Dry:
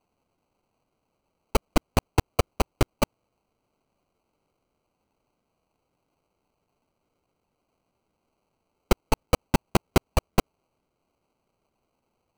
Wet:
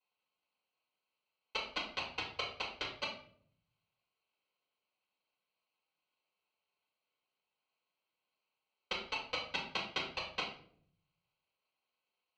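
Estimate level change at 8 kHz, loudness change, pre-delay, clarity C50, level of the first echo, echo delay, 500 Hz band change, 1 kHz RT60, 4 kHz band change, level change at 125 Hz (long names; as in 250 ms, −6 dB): −19.5 dB, −12.0 dB, 4 ms, 6.0 dB, no echo audible, no echo audible, −18.0 dB, 0.45 s, −2.5 dB, −29.0 dB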